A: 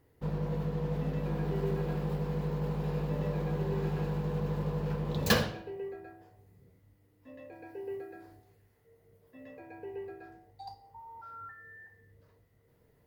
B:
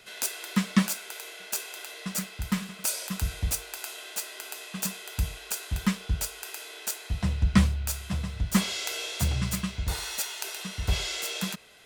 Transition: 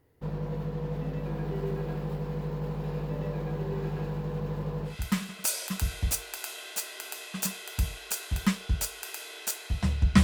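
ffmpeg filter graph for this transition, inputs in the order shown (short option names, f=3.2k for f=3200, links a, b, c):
-filter_complex "[0:a]apad=whole_dur=10.23,atrim=end=10.23,atrim=end=4.98,asetpts=PTS-STARTPTS[a];[1:a]atrim=start=2.24:end=7.63,asetpts=PTS-STARTPTS[b];[a][b]acrossfade=d=0.14:c1=tri:c2=tri"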